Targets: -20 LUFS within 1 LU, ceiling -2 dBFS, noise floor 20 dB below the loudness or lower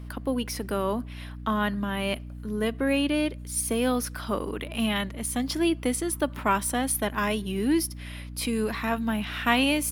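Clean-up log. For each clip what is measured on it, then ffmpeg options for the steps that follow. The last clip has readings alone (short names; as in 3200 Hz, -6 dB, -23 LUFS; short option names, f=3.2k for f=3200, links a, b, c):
hum 60 Hz; harmonics up to 300 Hz; hum level -36 dBFS; loudness -27.5 LUFS; peak -6.5 dBFS; loudness target -20.0 LUFS
-> -af "bandreject=f=60:t=h:w=4,bandreject=f=120:t=h:w=4,bandreject=f=180:t=h:w=4,bandreject=f=240:t=h:w=4,bandreject=f=300:t=h:w=4"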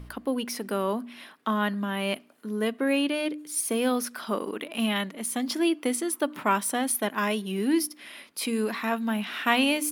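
hum none; loudness -28.0 LUFS; peak -7.0 dBFS; loudness target -20.0 LUFS
-> -af "volume=8dB,alimiter=limit=-2dB:level=0:latency=1"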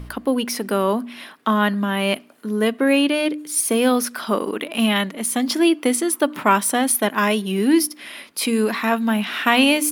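loudness -20.0 LUFS; peak -2.0 dBFS; noise floor -45 dBFS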